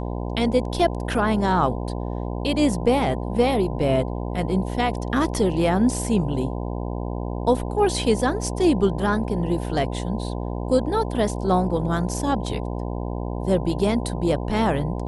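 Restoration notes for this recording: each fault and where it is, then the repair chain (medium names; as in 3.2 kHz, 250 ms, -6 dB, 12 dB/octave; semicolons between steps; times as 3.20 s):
buzz 60 Hz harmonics 17 -28 dBFS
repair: de-hum 60 Hz, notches 17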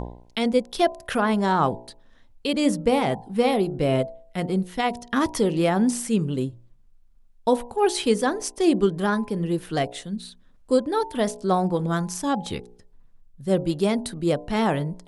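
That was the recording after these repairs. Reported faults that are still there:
nothing left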